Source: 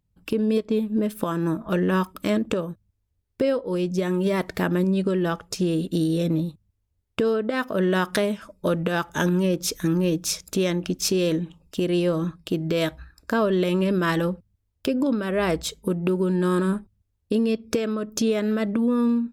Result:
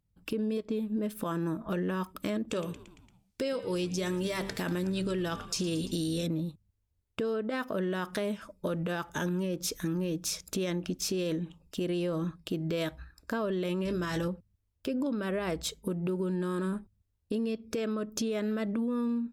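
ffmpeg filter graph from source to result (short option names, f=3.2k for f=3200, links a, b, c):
-filter_complex "[0:a]asettb=1/sr,asplit=3[a][b][c];[a]atrim=end=2.484[d];[b]atrim=start=2.48:end=6.27,asetpts=PTS-STARTPTS,afade=t=in:d=0.004:c=qsin,afade=t=out:st=3.786:d=0.004:c=qsin,equalizer=f=6.4k:w=0.4:g=11.5,bandreject=f=195.4:t=h:w=4,bandreject=f=390.8:t=h:w=4,bandreject=f=586.2:t=h:w=4,bandreject=f=781.6:t=h:w=4,bandreject=f=977:t=h:w=4,bandreject=f=1.1724k:t=h:w=4,bandreject=f=1.3678k:t=h:w=4,bandreject=f=1.5632k:t=h:w=4,bandreject=f=1.7586k:t=h:w=4,bandreject=f=1.954k:t=h:w=4,bandreject=f=2.1494k:t=h:w=4,bandreject=f=2.3448k:t=h:w=4,bandreject=f=2.5402k:t=h:w=4,bandreject=f=2.7356k:t=h:w=4,bandreject=f=2.931k:t=h:w=4,bandreject=f=3.1264k:t=h:w=4,bandreject=f=3.3218k:t=h:w=4,bandreject=f=3.5172k:t=h:w=4,bandreject=f=3.7126k:t=h:w=4,asplit=6[e][f][g][h][i][j];[f]adelay=114,afreqshift=-73,volume=-19.5dB[k];[g]adelay=228,afreqshift=-146,volume=-23.7dB[l];[h]adelay=342,afreqshift=-219,volume=-27.8dB[m];[i]adelay=456,afreqshift=-292,volume=-32dB[n];[j]adelay=570,afreqshift=-365,volume=-36.1dB[o];[e][k][l][m][n][o]amix=inputs=6:normalize=0,atrim=end_sample=167139[p];[c]atrim=start=6.266[q];[d][p]acrossfade=d=0.004:c1=hsin:c2=qsin[r];[r][q]acrossfade=d=0.004:c1=qsin:c2=hsin,asettb=1/sr,asplit=3[s][t][u];[s]atrim=end=13.854[v];[t]atrim=start=13.85:end=14.28,asetpts=PTS-STARTPTS,afade=t=in:d=0.004:c=qsin,afade=t=out:st=0.426:d=0.004:c=qsin,equalizer=f=6.2k:t=o:w=0.67:g=12.5,aeval=exprs='val(0)+0.0158*(sin(2*PI*60*n/s)+sin(2*PI*2*60*n/s)/2+sin(2*PI*3*60*n/s)/3+sin(2*PI*4*60*n/s)/4+sin(2*PI*5*60*n/s)/5)':c=same,asplit=2[w][x];[x]adelay=23,volume=-9.5dB[y];[w][y]amix=inputs=2:normalize=0,atrim=end_sample=18963[z];[u]atrim=start=14.276[aa];[v][z]acrossfade=d=0.004:c1=hsin:c2=qsin[ab];[ab][aa]acrossfade=d=0.004:c1=qsin:c2=hsin,alimiter=limit=-16.5dB:level=0:latency=1:release=25,acompressor=threshold=-24dB:ratio=6,volume=-4dB"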